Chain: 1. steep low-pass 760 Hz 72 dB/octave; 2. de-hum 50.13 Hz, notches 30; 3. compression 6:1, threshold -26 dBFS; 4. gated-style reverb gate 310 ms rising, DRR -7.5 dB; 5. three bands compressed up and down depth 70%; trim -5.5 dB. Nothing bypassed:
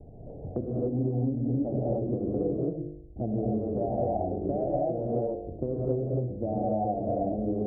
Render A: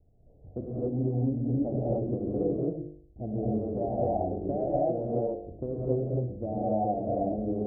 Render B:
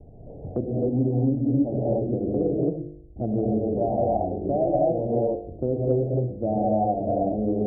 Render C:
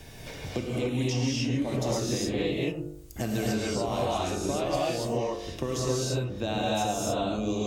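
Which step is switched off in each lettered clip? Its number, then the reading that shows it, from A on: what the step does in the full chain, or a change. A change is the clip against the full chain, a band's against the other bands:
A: 5, crest factor change +2.5 dB; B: 3, mean gain reduction 3.0 dB; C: 1, 1 kHz band +2.0 dB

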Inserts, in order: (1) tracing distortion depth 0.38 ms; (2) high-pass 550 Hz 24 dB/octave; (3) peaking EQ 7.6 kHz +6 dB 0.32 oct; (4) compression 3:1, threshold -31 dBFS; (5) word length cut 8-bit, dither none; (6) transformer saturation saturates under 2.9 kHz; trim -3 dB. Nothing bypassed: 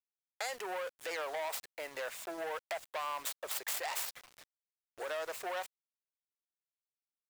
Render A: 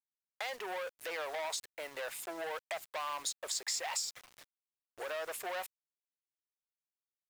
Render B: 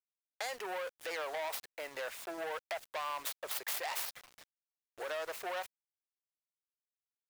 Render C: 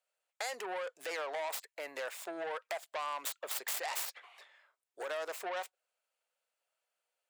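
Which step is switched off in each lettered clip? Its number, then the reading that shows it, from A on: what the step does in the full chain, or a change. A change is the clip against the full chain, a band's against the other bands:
1, crest factor change -1.5 dB; 3, 8 kHz band -2.0 dB; 5, distortion -19 dB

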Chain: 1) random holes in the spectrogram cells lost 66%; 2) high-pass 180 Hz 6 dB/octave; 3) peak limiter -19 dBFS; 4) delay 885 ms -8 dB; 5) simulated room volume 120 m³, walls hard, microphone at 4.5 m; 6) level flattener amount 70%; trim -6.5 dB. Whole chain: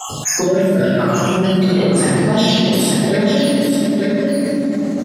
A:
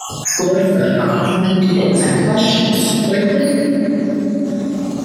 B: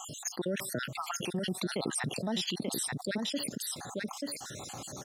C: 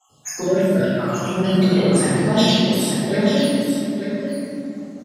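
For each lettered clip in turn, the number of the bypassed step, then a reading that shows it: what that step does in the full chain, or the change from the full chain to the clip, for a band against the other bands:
4, momentary loudness spread change +1 LU; 5, momentary loudness spread change +2 LU; 6, crest factor change +2.0 dB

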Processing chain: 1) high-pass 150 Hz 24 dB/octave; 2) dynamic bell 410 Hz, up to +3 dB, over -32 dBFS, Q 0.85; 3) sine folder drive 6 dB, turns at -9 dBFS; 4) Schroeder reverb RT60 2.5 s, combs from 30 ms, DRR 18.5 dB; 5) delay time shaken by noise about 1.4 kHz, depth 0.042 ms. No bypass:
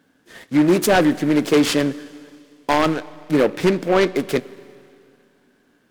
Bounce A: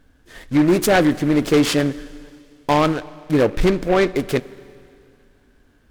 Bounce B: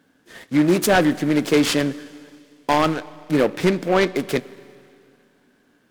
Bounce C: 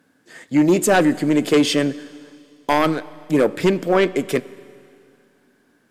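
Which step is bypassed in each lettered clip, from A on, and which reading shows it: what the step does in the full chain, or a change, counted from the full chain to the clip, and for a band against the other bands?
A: 1, 125 Hz band +3.5 dB; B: 2, 500 Hz band -1.5 dB; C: 5, 8 kHz band +1.5 dB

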